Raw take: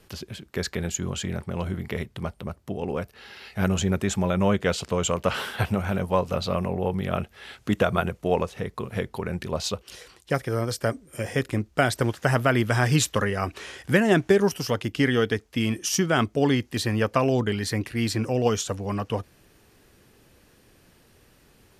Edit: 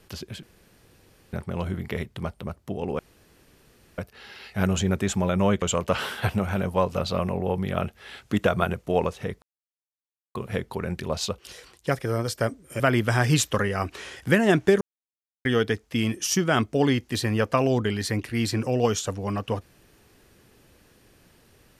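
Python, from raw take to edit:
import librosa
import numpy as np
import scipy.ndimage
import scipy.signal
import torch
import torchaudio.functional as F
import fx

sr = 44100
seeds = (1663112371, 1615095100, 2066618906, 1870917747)

y = fx.edit(x, sr, fx.room_tone_fill(start_s=0.43, length_s=0.9),
    fx.insert_room_tone(at_s=2.99, length_s=0.99),
    fx.cut(start_s=4.63, length_s=0.35),
    fx.insert_silence(at_s=8.78, length_s=0.93),
    fx.cut(start_s=11.23, length_s=1.19),
    fx.silence(start_s=14.43, length_s=0.64), tone=tone)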